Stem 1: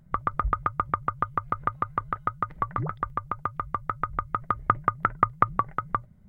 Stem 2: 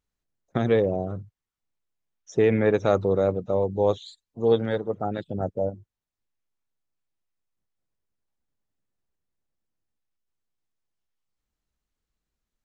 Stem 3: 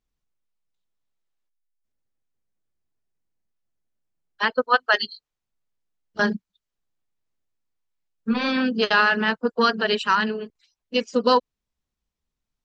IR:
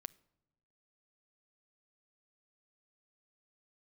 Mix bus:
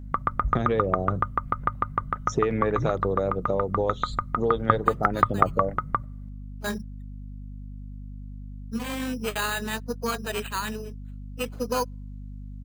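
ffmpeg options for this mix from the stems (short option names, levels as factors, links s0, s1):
-filter_complex "[0:a]volume=0.891,asplit=2[s0][s1];[s1]volume=0.473[s2];[1:a]acompressor=threshold=0.0355:ratio=5,volume=1.41,asplit=3[s3][s4][s5];[s4]volume=0.668[s6];[2:a]equalizer=f=1400:t=o:w=0.31:g=-6,acrusher=samples=8:mix=1:aa=0.000001,adelay=450,volume=0.355,asplit=2[s7][s8];[s8]volume=0.158[s9];[s5]apad=whole_len=577418[s10];[s7][s10]sidechaincompress=threshold=0.00398:ratio=8:attack=16:release=294[s11];[3:a]atrim=start_sample=2205[s12];[s2][s6][s9]amix=inputs=3:normalize=0[s13];[s13][s12]afir=irnorm=-1:irlink=0[s14];[s0][s3][s11][s14]amix=inputs=4:normalize=0,aeval=exprs='val(0)+0.0141*(sin(2*PI*50*n/s)+sin(2*PI*2*50*n/s)/2+sin(2*PI*3*50*n/s)/3+sin(2*PI*4*50*n/s)/4+sin(2*PI*5*50*n/s)/5)':c=same"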